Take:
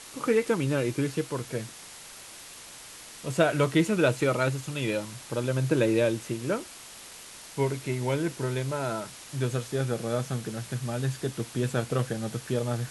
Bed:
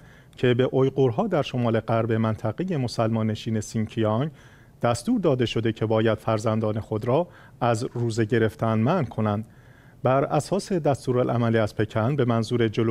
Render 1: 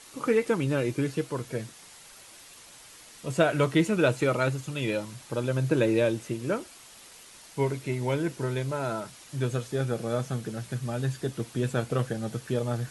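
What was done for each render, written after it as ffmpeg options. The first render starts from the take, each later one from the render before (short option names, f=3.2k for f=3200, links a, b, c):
-af "afftdn=nr=6:nf=-46"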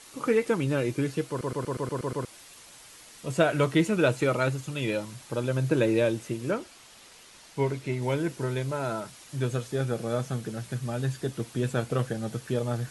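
-filter_complex "[0:a]asettb=1/sr,asplit=3[a][b][c];[a]atrim=end=6.514[d];[b]atrim=start=6.51:end=8.02,asetpts=PTS-STARTPTS,afade=t=in:d=0.004:c=qsin,afade=t=out:st=1.506:d=0.004:c=qsin,acrossover=split=6700[e][f];[f]acompressor=threshold=-57dB:ratio=4:attack=1:release=60[g];[e][g]amix=inputs=2:normalize=0[h];[c]atrim=start=8.016[i];[d][h]acrossfade=d=0.004:c1=hsin:c2=qsin[j];[j][i]acrossfade=d=0.004:c1=qsin:c2=hsin,asplit=9[k][l][m][n][o][p][q][r][s];[k]atrim=end=1.412[t];[l]atrim=start=1.288:end=1.412[u];[m]atrim=start=1.288:end=1.412[v];[n]atrim=start=1.288:end=1.412[w];[o]atrim=start=1.288:end=1.412[x];[p]atrim=start=1.288:end=1.412[y];[q]atrim=start=1.288:end=1.412[z];[r]atrim=start=1.288:end=1.412[aa];[s]atrim=start=2.248[ab];[t][u]acrossfade=d=0.004:c1=hsin:c2=hsin[ac];[ac][v]acrossfade=d=0.004:c1=hsin:c2=hsin[ad];[ad][w]acrossfade=d=0.004:c1=hsin:c2=hsin[ae];[ae][x]acrossfade=d=0.004:c1=hsin:c2=hsin[af];[af][y]acrossfade=d=0.004:c1=hsin:c2=hsin[ag];[ag][z]acrossfade=d=0.004:c1=hsin:c2=hsin[ah];[ah][aa]acrossfade=d=0.004:c1=hsin:c2=hsin[ai];[ai][ab]acrossfade=d=0.004:c1=hsin:c2=hsin"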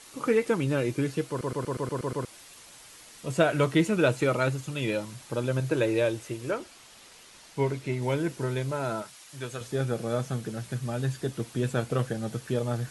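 -filter_complex "[0:a]asettb=1/sr,asplit=3[a][b][c];[a]atrim=end=5.604[d];[b]atrim=start=5.6:end=6.6,asetpts=PTS-STARTPTS,afade=t=in:d=0.004:c=qsin,afade=t=out:st=0.996:d=0.004:c=qsin,equalizer=f=200:t=o:w=0.77:g=-11[e];[c]atrim=start=6.596[f];[d][e]acrossfade=d=0.004:c1=hsin:c2=qsin[g];[g][f]acrossfade=d=0.004:c1=qsin:c2=hsin,asettb=1/sr,asplit=3[h][i][j];[h]atrim=end=9.024[k];[i]atrim=start=9.02:end=9.61,asetpts=PTS-STARTPTS,afade=t=in:d=0.004:c=qsin,afade=t=out:st=0.586:d=0.004:c=qsin,lowshelf=f=470:g=-12[l];[j]atrim=start=9.606[m];[k][l]acrossfade=d=0.004:c1=hsin:c2=qsin[n];[n][m]acrossfade=d=0.004:c1=qsin:c2=hsin"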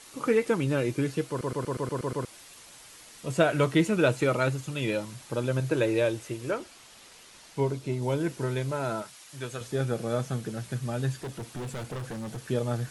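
-filter_complex "[0:a]asettb=1/sr,asplit=3[a][b][c];[a]atrim=end=7.604[d];[b]atrim=start=7.6:end=8.21,asetpts=PTS-STARTPTS,afade=t=in:d=0.004:c=qsin,afade=t=out:st=0.606:d=0.004:c=qsin,equalizer=f=2k:w=1.6:g=-8.5[e];[c]atrim=start=8.206[f];[d][e]acrossfade=d=0.004:c1=hsin:c2=qsin[g];[g][f]acrossfade=d=0.004:c1=qsin:c2=hsin,asettb=1/sr,asplit=3[h][i][j];[h]atrim=end=11.214[k];[i]atrim=start=11.21:end=12.44,asetpts=PTS-STARTPTS,afade=t=in:d=0.004:c=qsin,afade=t=out:st=1.226:d=0.004:c=qsin,volume=33dB,asoftclip=hard,volume=-33dB[l];[j]atrim=start=12.436[m];[k][l]acrossfade=d=0.004:c1=hsin:c2=qsin[n];[n][m]acrossfade=d=0.004:c1=qsin:c2=hsin"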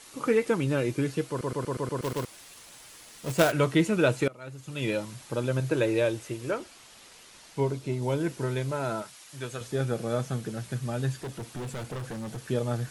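-filter_complex "[0:a]asettb=1/sr,asplit=3[a][b][c];[a]atrim=end=2.024[d];[b]atrim=start=2.02:end=3.52,asetpts=PTS-STARTPTS,afade=t=in:d=0.004:c=qsin,afade=t=out:st=1.496:d=0.004:c=qsin,acrusher=bits=2:mode=log:mix=0:aa=0.000001[e];[c]atrim=start=3.516[f];[d][e]acrossfade=d=0.004:c1=hsin:c2=qsin[g];[g][f]acrossfade=d=0.004:c1=qsin:c2=hsin,asplit=2[h][i];[h]atrim=end=4.28,asetpts=PTS-STARTPTS,afade=t=out:st=4.276:d=0.004:c=hsin:silence=0.0707946[j];[i]atrim=start=4.28,asetpts=PTS-STARTPTS,afade=t=in:d=0.56:c=qua:silence=0.0707946[k];[j][k]concat=n=2:v=0:a=1"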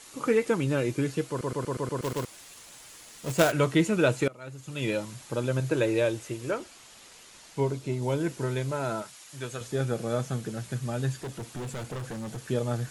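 -af "equalizer=f=7k:t=o:w=0.23:g=4"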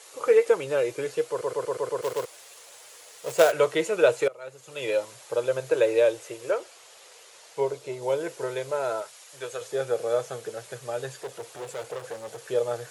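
-af "highpass=94,lowshelf=f=340:t=q:w=3:g=-11.5"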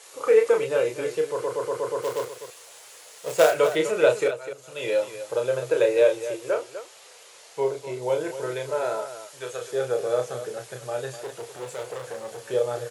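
-af "aecho=1:1:32.07|250.7:0.562|0.282"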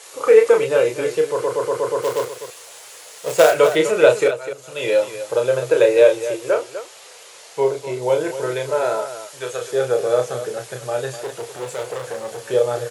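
-af "volume=6.5dB,alimiter=limit=-1dB:level=0:latency=1"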